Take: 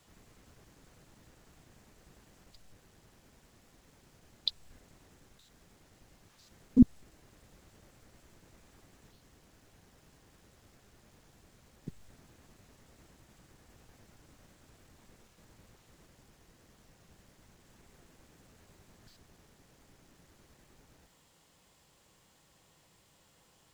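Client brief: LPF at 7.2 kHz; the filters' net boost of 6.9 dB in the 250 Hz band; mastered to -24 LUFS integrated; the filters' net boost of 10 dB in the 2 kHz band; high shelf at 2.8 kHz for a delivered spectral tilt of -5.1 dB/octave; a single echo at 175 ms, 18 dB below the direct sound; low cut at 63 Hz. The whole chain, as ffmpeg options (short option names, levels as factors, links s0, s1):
-af "highpass=63,lowpass=7200,equalizer=f=250:t=o:g=7,equalizer=f=2000:t=o:g=9,highshelf=f=2800:g=8,aecho=1:1:175:0.126,volume=0.794"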